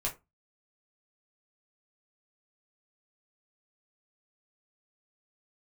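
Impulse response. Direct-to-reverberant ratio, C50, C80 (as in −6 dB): −3.0 dB, 14.5 dB, 23.0 dB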